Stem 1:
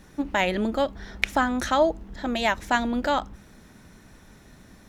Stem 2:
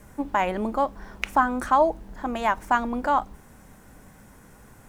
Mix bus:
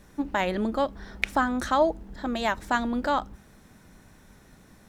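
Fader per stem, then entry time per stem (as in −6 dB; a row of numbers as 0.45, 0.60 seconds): −4.5, −9.0 decibels; 0.00, 0.00 seconds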